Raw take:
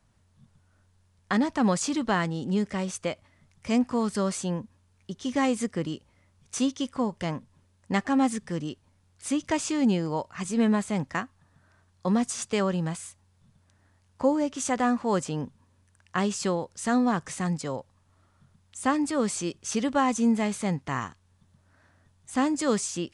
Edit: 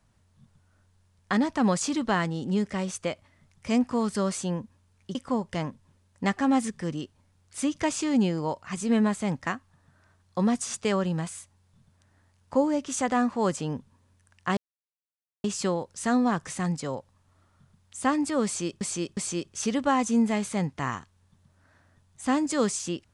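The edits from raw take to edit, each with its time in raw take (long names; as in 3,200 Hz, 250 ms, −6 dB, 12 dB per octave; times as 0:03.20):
0:05.15–0:06.83: remove
0:16.25: splice in silence 0.87 s
0:19.26–0:19.62: repeat, 3 plays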